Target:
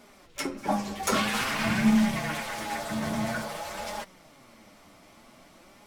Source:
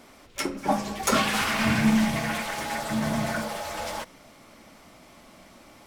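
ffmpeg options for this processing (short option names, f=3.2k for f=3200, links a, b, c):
-af "flanger=delay=4.8:depth=5.6:regen=44:speed=0.51:shape=sinusoidal,volume=1dB"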